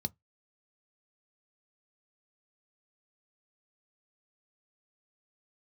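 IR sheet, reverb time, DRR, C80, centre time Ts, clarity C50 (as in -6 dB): 0.15 s, 11.5 dB, 44.5 dB, 3 ms, 34.5 dB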